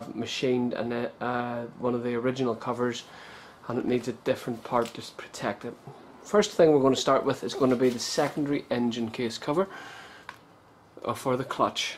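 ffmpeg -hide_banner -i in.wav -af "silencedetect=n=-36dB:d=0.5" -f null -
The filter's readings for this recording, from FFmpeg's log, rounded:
silence_start: 10.34
silence_end: 10.97 | silence_duration: 0.63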